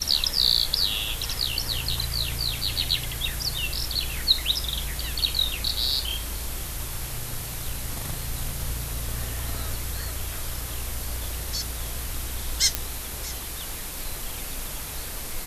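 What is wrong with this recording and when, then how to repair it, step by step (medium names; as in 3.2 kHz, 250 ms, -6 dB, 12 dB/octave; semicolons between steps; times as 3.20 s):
12.75 s: pop -4 dBFS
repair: de-click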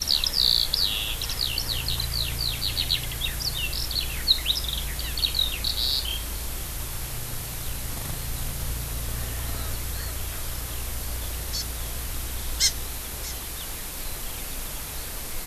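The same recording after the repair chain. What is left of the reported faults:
nothing left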